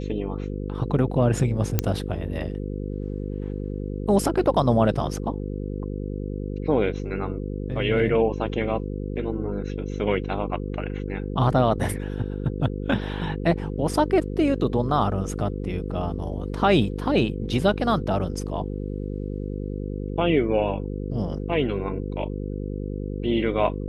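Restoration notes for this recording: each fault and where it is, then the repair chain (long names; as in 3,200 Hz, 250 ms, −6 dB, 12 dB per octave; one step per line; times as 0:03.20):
mains buzz 50 Hz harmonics 10 −30 dBFS
0:01.79: click −6 dBFS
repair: click removal
hum removal 50 Hz, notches 10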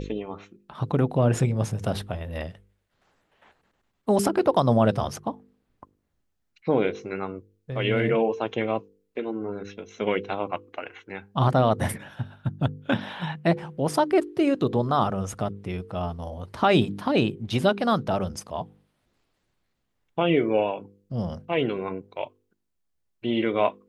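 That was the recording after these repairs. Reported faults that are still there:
none of them is left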